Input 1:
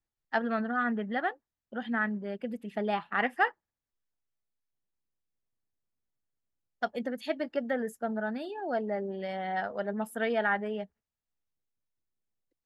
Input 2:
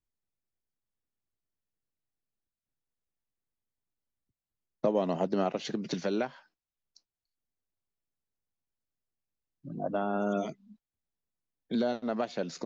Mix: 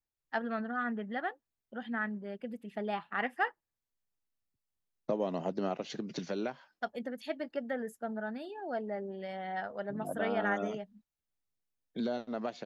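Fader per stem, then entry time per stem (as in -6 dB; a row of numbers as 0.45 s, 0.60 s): -5.0 dB, -5.0 dB; 0.00 s, 0.25 s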